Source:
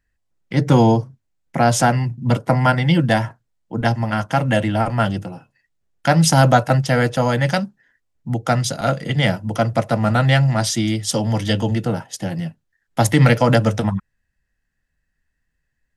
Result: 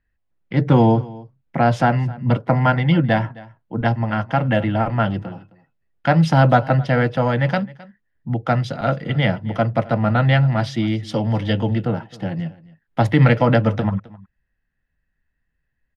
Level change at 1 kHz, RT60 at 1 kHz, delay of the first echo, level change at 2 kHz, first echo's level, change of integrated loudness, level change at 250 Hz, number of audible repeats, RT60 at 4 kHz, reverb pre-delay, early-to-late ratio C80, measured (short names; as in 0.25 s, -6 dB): -1.0 dB, none, 0.263 s, -1.5 dB, -21.0 dB, -1.0 dB, -0.5 dB, 1, none, none, none